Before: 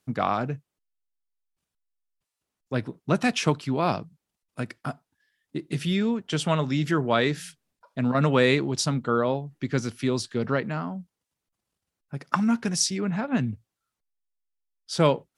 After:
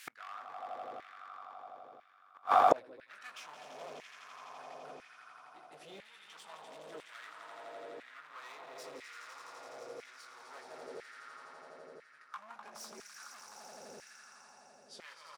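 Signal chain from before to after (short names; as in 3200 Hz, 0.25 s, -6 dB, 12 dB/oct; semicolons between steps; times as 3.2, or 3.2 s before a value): 7.26–8.33 LPF 2600 Hz; in parallel at -4 dB: wavefolder -15.5 dBFS; on the sum: low shelf 110 Hz +11 dB; doubler 19 ms -5.5 dB; on a send: swelling echo 84 ms, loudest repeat 5, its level -8 dB; on the sum: hard clip -17 dBFS, distortion -8 dB; vocal rider within 5 dB 2 s; flipped gate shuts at -24 dBFS, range -42 dB; LFO high-pass saw down 1 Hz 440–2000 Hz; gain +15 dB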